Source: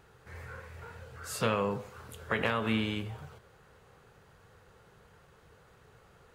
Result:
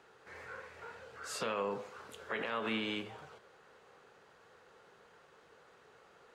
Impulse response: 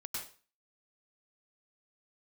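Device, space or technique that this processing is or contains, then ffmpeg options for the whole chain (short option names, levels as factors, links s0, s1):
DJ mixer with the lows and highs turned down: -filter_complex "[0:a]acrossover=split=230 8000:gain=0.1 1 0.2[s0][s1][s2];[s0][s1][s2]amix=inputs=3:normalize=0,alimiter=level_in=1.26:limit=0.0631:level=0:latency=1:release=101,volume=0.794"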